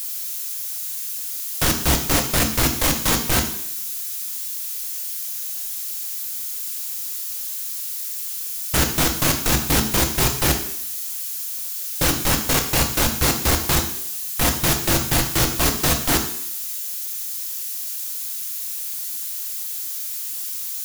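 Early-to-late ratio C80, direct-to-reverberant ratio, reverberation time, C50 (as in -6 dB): 11.5 dB, 4.5 dB, 0.70 s, 9.0 dB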